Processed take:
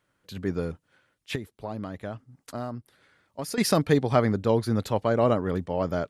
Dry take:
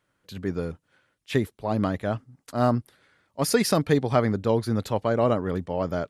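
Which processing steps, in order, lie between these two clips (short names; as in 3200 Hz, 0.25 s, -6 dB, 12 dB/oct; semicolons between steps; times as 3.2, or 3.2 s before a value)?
1.35–3.58 compressor 5:1, threshold -32 dBFS, peak gain reduction 15 dB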